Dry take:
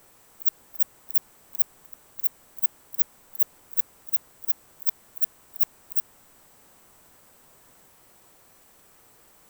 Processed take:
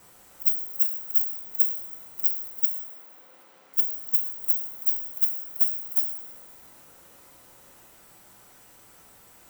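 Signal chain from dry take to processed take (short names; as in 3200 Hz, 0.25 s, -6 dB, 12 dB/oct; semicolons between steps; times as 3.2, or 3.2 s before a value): band inversion scrambler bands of 500 Hz; 2.65–3.74 BPF 270–4200 Hz; two-slope reverb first 0.8 s, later 3 s, from -18 dB, DRR 2 dB; gain +1 dB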